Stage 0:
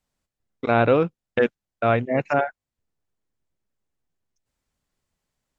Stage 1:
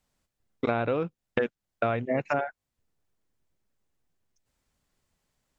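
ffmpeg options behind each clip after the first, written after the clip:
ffmpeg -i in.wav -af "acompressor=threshold=-26dB:ratio=12,volume=3dB" out.wav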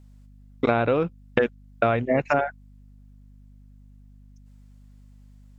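ffmpeg -i in.wav -af "aeval=exprs='val(0)+0.002*(sin(2*PI*50*n/s)+sin(2*PI*2*50*n/s)/2+sin(2*PI*3*50*n/s)/3+sin(2*PI*4*50*n/s)/4+sin(2*PI*5*50*n/s)/5)':channel_layout=same,volume=5.5dB" out.wav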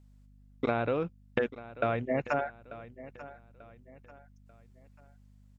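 ffmpeg -i in.wav -af "aecho=1:1:890|1780|2670:0.15|0.0554|0.0205,volume=-8dB" out.wav

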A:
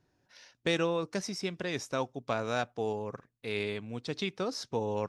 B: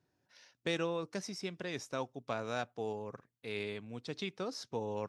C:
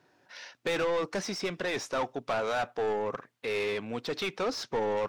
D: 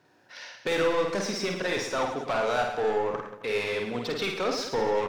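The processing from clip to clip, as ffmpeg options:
ffmpeg -i in.wav -af "highpass=75,volume=-5.5dB" out.wav
ffmpeg -i in.wav -filter_complex "[0:a]asplit=2[link_01][link_02];[link_02]highpass=frequency=720:poles=1,volume=26dB,asoftclip=type=tanh:threshold=-20.5dB[link_03];[link_01][link_03]amix=inputs=2:normalize=0,lowpass=frequency=2200:poles=1,volume=-6dB" out.wav
ffmpeg -i in.wav -af "aecho=1:1:50|110|182|268.4|372.1:0.631|0.398|0.251|0.158|0.1,volume=1.5dB" out.wav

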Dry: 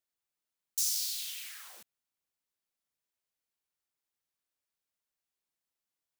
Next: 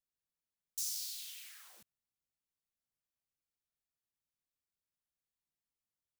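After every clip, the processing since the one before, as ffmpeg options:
ffmpeg -i in.wav -af "bass=frequency=250:gain=11,treble=frequency=4000:gain=1,volume=-8.5dB" out.wav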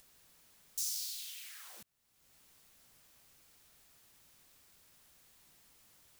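ffmpeg -i in.wav -af "acompressor=mode=upward:threshold=-45dB:ratio=2.5,volume=1.5dB" out.wav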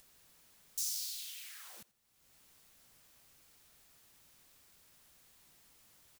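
ffmpeg -i in.wav -af "aecho=1:1:85|170:0.0841|0.0261" out.wav

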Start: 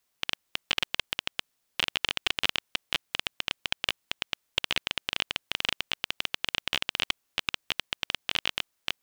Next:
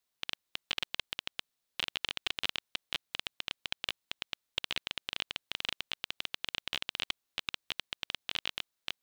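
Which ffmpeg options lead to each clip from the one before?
ffmpeg -i in.wav -af "equalizer=frequency=3900:width=3.6:gain=4.5,volume=-8dB" out.wav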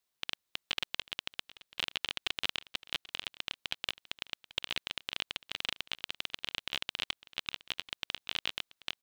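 ffmpeg -i in.wav -af "aecho=1:1:785:0.112" out.wav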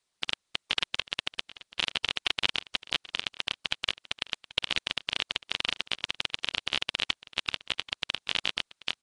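ffmpeg -i in.wav -af "volume=6.5dB" -ar 22050 -c:a nellymoser out.flv

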